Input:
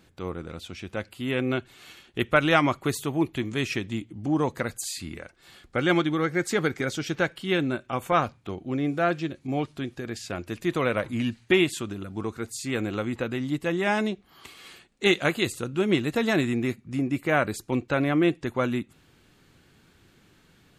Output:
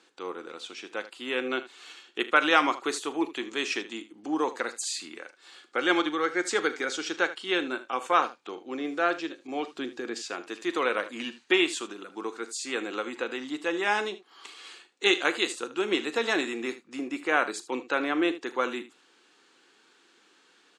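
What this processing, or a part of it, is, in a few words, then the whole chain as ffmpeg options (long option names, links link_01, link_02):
phone speaker on a table: -filter_complex "[0:a]highpass=frequency=350:width=0.5412,highpass=frequency=350:width=1.3066,equalizer=frequency=390:width_type=q:width=4:gain=-3,equalizer=frequency=620:width_type=q:width=4:gain=-10,equalizer=frequency=2100:width_type=q:width=4:gain=-4,lowpass=frequency=8500:width=0.5412,lowpass=frequency=8500:width=1.3066,asettb=1/sr,asplit=3[link_01][link_02][link_03];[link_01]atrim=end=9.664[link_04];[link_02]atrim=start=9.66:end=10.2,asetpts=PTS-STARTPTS,afade=type=in:duration=0.004:curve=qsin,afade=type=out:start_time=0.536:duration=0.004:curve=qsin,lowshelf=frequency=360:gain=9[link_05];[link_03]atrim=start=10.196[link_06];[link_04][link_05]acrossfade=duration=0.004:curve1=hsin:curve2=qsin[link_07];[link_07][link_06]acrossfade=duration=0.004:curve1=qsin:curve2=hsin,aecho=1:1:39|77:0.168|0.168,volume=2dB"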